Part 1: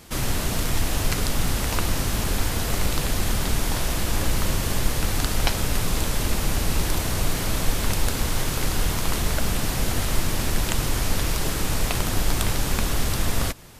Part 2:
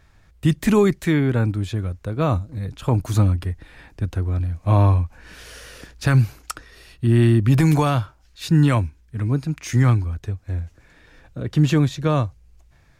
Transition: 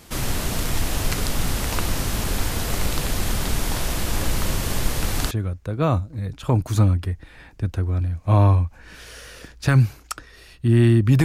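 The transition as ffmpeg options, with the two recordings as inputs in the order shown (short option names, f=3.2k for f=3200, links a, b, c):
-filter_complex "[0:a]apad=whole_dur=11.24,atrim=end=11.24,atrim=end=5.312[a];[1:a]atrim=start=1.698:end=7.63[b];[a][b]acrossfade=d=0.004:c1=hsin:c2=hsin"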